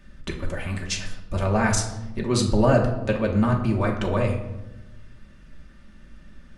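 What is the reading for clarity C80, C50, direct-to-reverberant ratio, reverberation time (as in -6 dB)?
10.0 dB, 7.5 dB, -0.5 dB, 1.0 s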